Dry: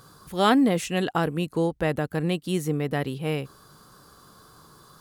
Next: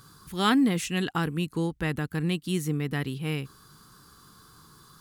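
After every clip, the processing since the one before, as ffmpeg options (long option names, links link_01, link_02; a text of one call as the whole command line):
ffmpeg -i in.wav -af "equalizer=frequency=600:width_type=o:width=0.88:gain=-14" out.wav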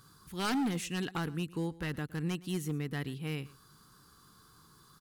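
ffmpeg -i in.wav -af "aeval=exprs='0.106*(abs(mod(val(0)/0.106+3,4)-2)-1)':channel_layout=same,aecho=1:1:115:0.0944,volume=-6.5dB" out.wav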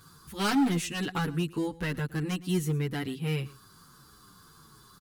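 ffmpeg -i in.wav -filter_complex "[0:a]asplit=2[link_01][link_02];[link_02]adelay=8,afreqshift=-1.6[link_03];[link_01][link_03]amix=inputs=2:normalize=1,volume=8dB" out.wav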